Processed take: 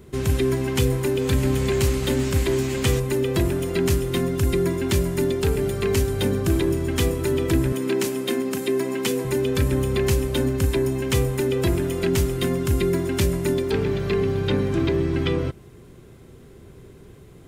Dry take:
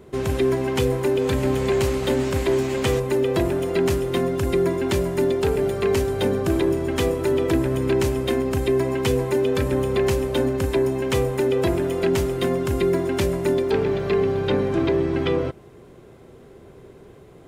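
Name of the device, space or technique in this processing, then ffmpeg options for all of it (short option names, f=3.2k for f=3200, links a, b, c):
smiley-face EQ: -filter_complex "[0:a]asettb=1/sr,asplit=3[a][b][c];[a]atrim=end=7.724[d];[b]atrim=start=7.72:end=9.25,asetpts=PTS-STARTPTS,afade=t=in:d=0.004:c=qsin,afade=t=out:st=1.526:d=0.004:c=qsin,highpass=f=190:w=0.5412,highpass=f=190:w=1.3066[e];[c]atrim=start=9.246[f];[d][e]acrossfade=d=0.004:c1=hsin:c2=qsin[g];[g][f]acrossfade=d=0.004:c1=qsin:c2=hsin,lowshelf=f=170:g=6,equalizer=f=650:t=o:w=1.5:g=-7,highshelf=f=5.5k:g=6.5"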